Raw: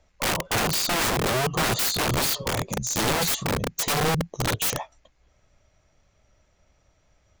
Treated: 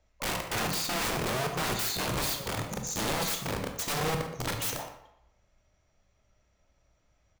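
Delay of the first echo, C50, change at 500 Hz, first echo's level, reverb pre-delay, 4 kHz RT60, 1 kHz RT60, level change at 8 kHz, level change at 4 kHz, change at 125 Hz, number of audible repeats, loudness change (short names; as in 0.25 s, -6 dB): 0.12 s, 6.0 dB, -6.5 dB, -14.0 dB, 20 ms, 0.55 s, 0.80 s, -7.0 dB, -6.5 dB, -7.0 dB, 1, -6.5 dB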